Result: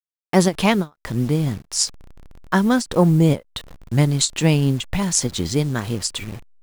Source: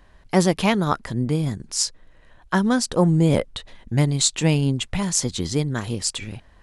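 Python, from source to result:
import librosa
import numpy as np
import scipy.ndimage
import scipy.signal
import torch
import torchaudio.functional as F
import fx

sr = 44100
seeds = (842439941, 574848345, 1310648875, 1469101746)

y = fx.delta_hold(x, sr, step_db=-37.5)
y = fx.vibrato(y, sr, rate_hz=0.52, depth_cents=9.4)
y = fx.end_taper(y, sr, db_per_s=360.0)
y = y * 10.0 ** (2.5 / 20.0)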